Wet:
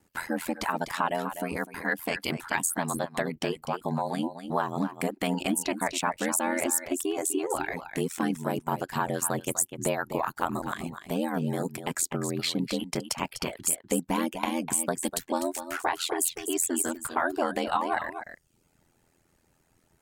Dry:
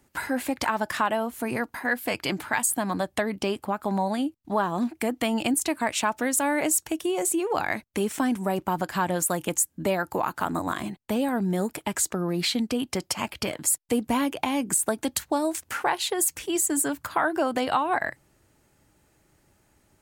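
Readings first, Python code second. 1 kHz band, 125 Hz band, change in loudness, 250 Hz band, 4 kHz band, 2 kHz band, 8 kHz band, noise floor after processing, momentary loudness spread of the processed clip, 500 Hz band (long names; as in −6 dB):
−3.0 dB, −0.5 dB, −3.0 dB, −4.0 dB, −3.0 dB, −3.0 dB, −3.0 dB, −69 dBFS, 6 LU, −3.0 dB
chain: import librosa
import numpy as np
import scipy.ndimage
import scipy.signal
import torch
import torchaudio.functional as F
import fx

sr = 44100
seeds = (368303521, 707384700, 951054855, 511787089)

y = x + 10.0 ** (-9.0 / 20.0) * np.pad(x, (int(249 * sr / 1000.0), 0))[:len(x)]
y = fx.dereverb_blind(y, sr, rt60_s=0.53)
y = y * np.sin(2.0 * np.pi * 42.0 * np.arange(len(y)) / sr)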